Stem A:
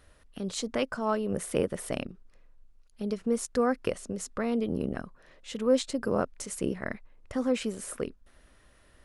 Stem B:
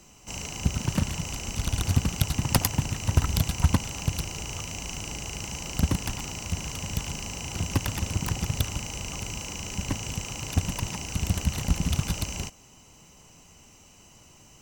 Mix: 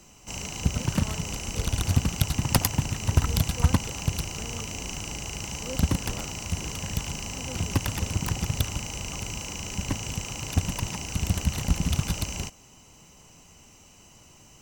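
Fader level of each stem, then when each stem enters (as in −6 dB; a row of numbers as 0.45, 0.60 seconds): −15.0, +0.5 decibels; 0.00, 0.00 seconds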